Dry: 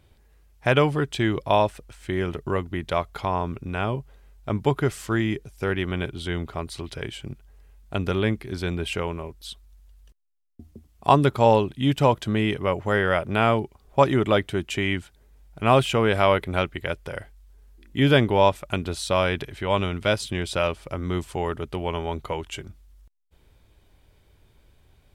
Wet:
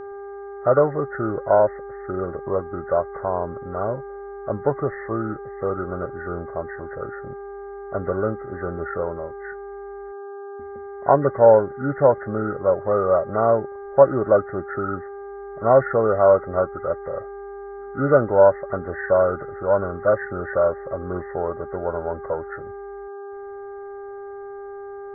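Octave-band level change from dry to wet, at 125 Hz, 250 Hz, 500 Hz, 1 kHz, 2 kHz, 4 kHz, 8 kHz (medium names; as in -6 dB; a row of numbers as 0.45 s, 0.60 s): -5.0 dB, -3.0 dB, +6.0 dB, +0.5 dB, -4.5 dB, under -40 dB, under -35 dB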